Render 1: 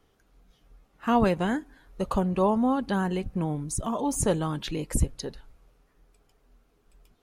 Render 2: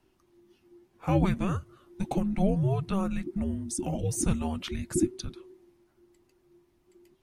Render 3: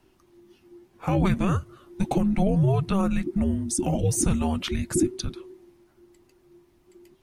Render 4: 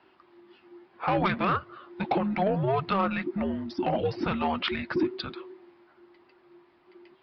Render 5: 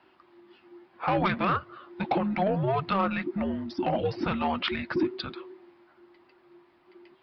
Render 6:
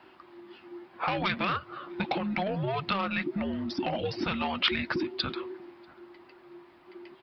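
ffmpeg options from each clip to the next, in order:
-af "afreqshift=-390,volume=-2dB"
-af "alimiter=limit=-20dB:level=0:latency=1:release=12,volume=6.5dB"
-af "bandpass=f=1.3k:t=q:w=0.79:csg=0,aresample=11025,asoftclip=type=tanh:threshold=-25.5dB,aresample=44100,volume=8.5dB"
-af "bandreject=f=420:w=12"
-filter_complex "[0:a]acrossover=split=2300[a][b];[a]acompressor=threshold=-35dB:ratio=6[c];[c][b]amix=inputs=2:normalize=0,asplit=2[d][e];[e]adelay=641.4,volume=-27dB,highshelf=f=4k:g=-14.4[f];[d][f]amix=inputs=2:normalize=0,volume=6dB"

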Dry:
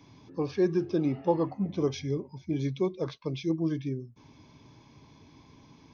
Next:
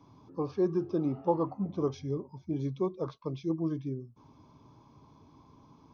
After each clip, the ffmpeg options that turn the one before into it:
-af "highshelf=f=1.5k:t=q:w=3:g=-6.5,volume=-3dB"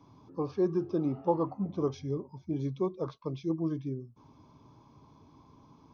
-af anull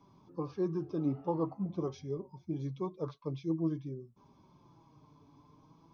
-af "flanger=delay=5:depth=2.1:regen=35:speed=0.47:shape=triangular"

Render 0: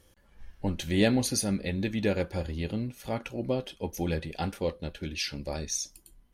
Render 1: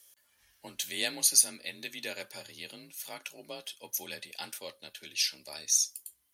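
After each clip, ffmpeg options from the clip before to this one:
-af "afreqshift=33,aderivative,volume=8dB"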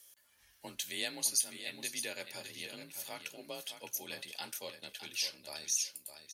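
-af "acompressor=threshold=-42dB:ratio=1.5,aecho=1:1:610|1220:0.335|0.0569"

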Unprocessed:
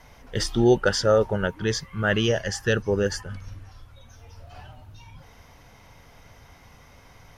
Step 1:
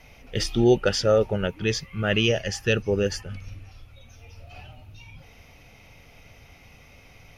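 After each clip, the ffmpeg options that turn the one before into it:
-af "equalizer=f=1k:t=o:w=0.33:g=-10,equalizer=f=1.6k:t=o:w=0.33:g=-7,equalizer=f=2.5k:t=o:w=0.33:g=11,equalizer=f=8k:t=o:w=0.33:g=-6"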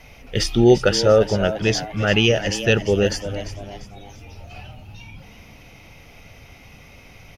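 -filter_complex "[0:a]asplit=5[a][b][c][d][e];[b]adelay=345,afreqshift=100,volume=-12.5dB[f];[c]adelay=690,afreqshift=200,volume=-20.5dB[g];[d]adelay=1035,afreqshift=300,volume=-28.4dB[h];[e]adelay=1380,afreqshift=400,volume=-36.4dB[i];[a][f][g][h][i]amix=inputs=5:normalize=0,volume=5dB"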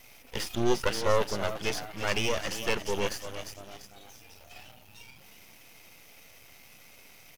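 -filter_complex "[0:a]aemphasis=mode=production:type=bsi,acrossover=split=2800[a][b];[b]acompressor=threshold=-27dB:ratio=4:attack=1:release=60[c];[a][c]amix=inputs=2:normalize=0,aeval=exprs='max(val(0),0)':c=same,volume=-4.5dB"

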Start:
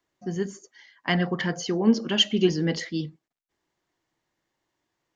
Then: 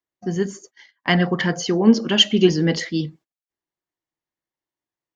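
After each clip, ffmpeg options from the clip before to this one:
-af "agate=range=-20dB:threshold=-51dB:ratio=16:detection=peak,volume=6dB"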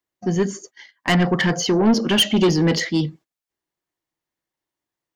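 -af "asoftclip=type=tanh:threshold=-16dB,volume=4.5dB"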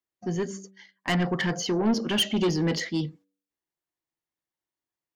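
-af "bandreject=f=96.56:t=h:w=4,bandreject=f=193.12:t=h:w=4,bandreject=f=289.68:t=h:w=4,bandreject=f=386.24:t=h:w=4,bandreject=f=482.8:t=h:w=4,bandreject=f=579.36:t=h:w=4,volume=-7.5dB"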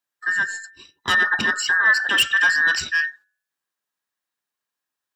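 -af "afftfilt=real='real(if(between(b,1,1012),(2*floor((b-1)/92)+1)*92-b,b),0)':imag='imag(if(between(b,1,1012),(2*floor((b-1)/92)+1)*92-b,b),0)*if(between(b,1,1012),-1,1)':win_size=2048:overlap=0.75,highpass=f=320:p=1,volume=6.5dB"

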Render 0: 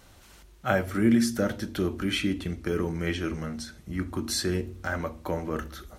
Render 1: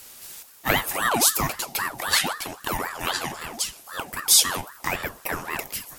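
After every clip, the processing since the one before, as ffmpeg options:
-af "aemphasis=mode=production:type=riaa,aeval=exprs='val(0)*sin(2*PI*1000*n/s+1000*0.55/3.8*sin(2*PI*3.8*n/s))':c=same,volume=6.5dB"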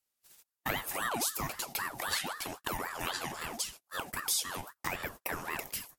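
-af "agate=range=-38dB:threshold=-37dB:ratio=16:detection=peak,acompressor=threshold=-33dB:ratio=2.5,volume=-2dB"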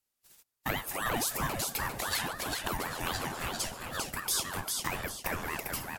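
-filter_complex "[0:a]lowshelf=f=280:g=5,asplit=2[a][b];[b]asplit=5[c][d][e][f][g];[c]adelay=399,afreqshift=-140,volume=-3.5dB[h];[d]adelay=798,afreqshift=-280,volume=-12.4dB[i];[e]adelay=1197,afreqshift=-420,volume=-21.2dB[j];[f]adelay=1596,afreqshift=-560,volume=-30.1dB[k];[g]adelay=1995,afreqshift=-700,volume=-39dB[l];[h][i][j][k][l]amix=inputs=5:normalize=0[m];[a][m]amix=inputs=2:normalize=0"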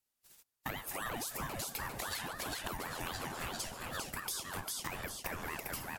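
-af "acompressor=threshold=-34dB:ratio=6,volume=-2dB"

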